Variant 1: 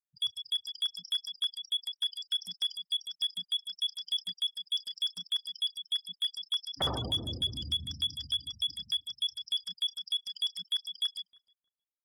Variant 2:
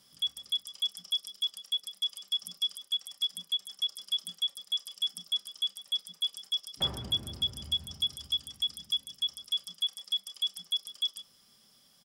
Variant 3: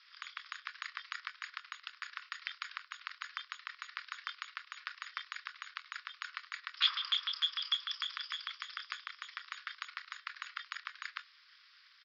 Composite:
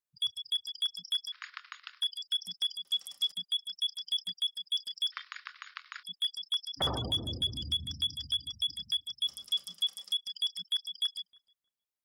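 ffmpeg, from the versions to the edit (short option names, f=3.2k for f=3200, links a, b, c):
-filter_complex "[2:a]asplit=2[a][b];[1:a]asplit=2[c][d];[0:a]asplit=5[e][f][g][h][i];[e]atrim=end=1.322[j];[a]atrim=start=1.318:end=2.012[k];[f]atrim=start=2.008:end=2.852[l];[c]atrim=start=2.848:end=3.322[m];[g]atrim=start=3.318:end=5.122[n];[b]atrim=start=5.118:end=6.032[o];[h]atrim=start=6.028:end=9.262[p];[d]atrim=start=9.258:end=10.132[q];[i]atrim=start=10.128[r];[j][k]acrossfade=d=0.004:c1=hsin:c2=hsin[s];[s][l]acrossfade=d=0.004:c1=hsin:c2=hsin[t];[t][m]acrossfade=d=0.004:c1=hsin:c2=hsin[u];[u][n]acrossfade=d=0.004:c1=hsin:c2=hsin[v];[v][o]acrossfade=d=0.004:c1=hsin:c2=hsin[w];[w][p]acrossfade=d=0.004:c1=hsin:c2=hsin[x];[x][q]acrossfade=d=0.004:c1=hsin:c2=hsin[y];[y][r]acrossfade=d=0.004:c1=hsin:c2=hsin"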